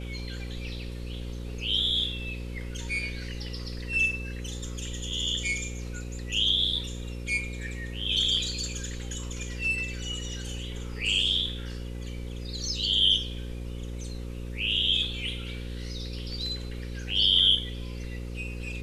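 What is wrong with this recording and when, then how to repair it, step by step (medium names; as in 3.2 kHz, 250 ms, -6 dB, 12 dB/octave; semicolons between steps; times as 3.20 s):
buzz 60 Hz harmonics 9 -36 dBFS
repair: de-hum 60 Hz, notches 9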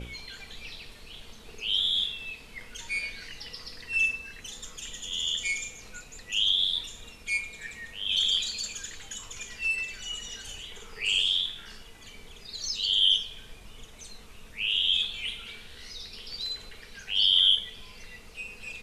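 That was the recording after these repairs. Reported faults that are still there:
nothing left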